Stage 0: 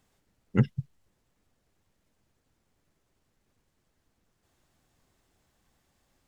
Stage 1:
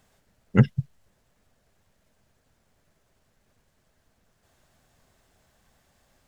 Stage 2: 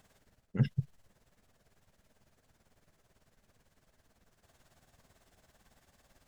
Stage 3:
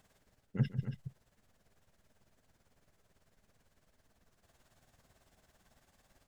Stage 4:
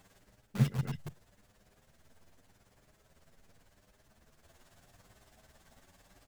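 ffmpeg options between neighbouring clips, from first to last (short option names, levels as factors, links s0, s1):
-af "equalizer=f=315:t=o:w=0.33:g=-6,equalizer=f=630:t=o:w=0.33:g=5,equalizer=f=1600:t=o:w=0.33:g=3,volume=2"
-af "areverse,acompressor=threshold=0.0631:ratio=16,areverse,tremolo=f=18:d=0.66,volume=1.26"
-af "aecho=1:1:146|278:0.211|0.335,volume=0.708"
-filter_complex "[0:a]asplit=2[s0][s1];[s1]aeval=exprs='(mod(63.1*val(0)+1,2)-1)/63.1':c=same,volume=0.631[s2];[s0][s2]amix=inputs=2:normalize=0,asplit=2[s3][s4];[s4]adelay=8.3,afreqshift=0.84[s5];[s3][s5]amix=inputs=2:normalize=1,volume=1.78"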